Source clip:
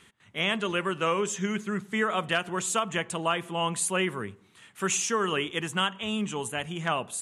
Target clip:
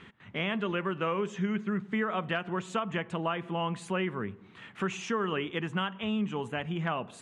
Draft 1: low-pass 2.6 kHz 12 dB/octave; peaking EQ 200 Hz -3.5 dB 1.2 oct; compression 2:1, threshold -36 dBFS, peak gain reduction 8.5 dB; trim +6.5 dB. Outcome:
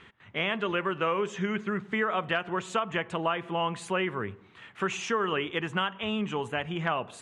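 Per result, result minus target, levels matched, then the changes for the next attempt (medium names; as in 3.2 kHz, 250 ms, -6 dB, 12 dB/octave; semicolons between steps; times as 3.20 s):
compression: peak gain reduction -3.5 dB; 250 Hz band -3.5 dB
change: compression 2:1, threshold -42.5 dBFS, peak gain reduction 11.5 dB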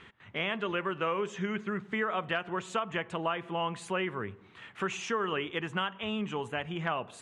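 250 Hz band -3.5 dB
change: peaking EQ 200 Hz +4 dB 1.2 oct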